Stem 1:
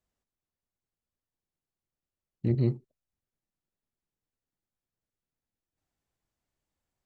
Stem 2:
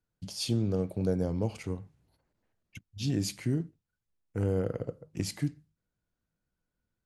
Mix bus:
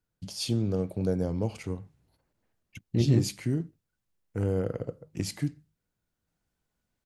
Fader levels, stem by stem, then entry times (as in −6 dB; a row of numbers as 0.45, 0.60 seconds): +1.5, +1.0 decibels; 0.50, 0.00 seconds